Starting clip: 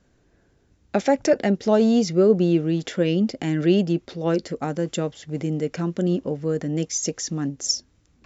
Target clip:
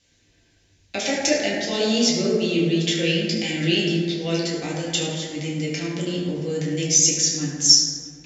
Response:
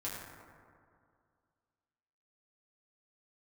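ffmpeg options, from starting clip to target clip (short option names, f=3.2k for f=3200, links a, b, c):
-filter_complex "[0:a]aexciter=amount=13:drive=5:freq=2.1k,aemphasis=mode=reproduction:type=50fm[a];[1:a]atrim=start_sample=2205[b];[a][b]afir=irnorm=-1:irlink=0,volume=-5.5dB"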